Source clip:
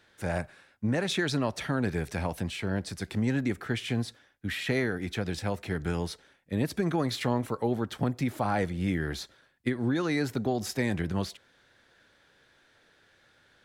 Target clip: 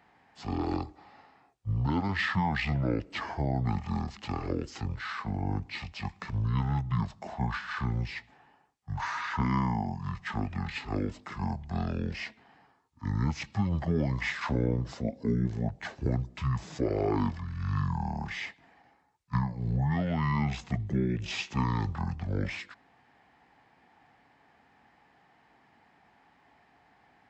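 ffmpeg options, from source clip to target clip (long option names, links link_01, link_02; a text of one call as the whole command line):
ffmpeg -i in.wav -af "highpass=150,equalizer=frequency=4200:width_type=o:width=0.77:gain=2.5,asetrate=22050,aresample=44100" out.wav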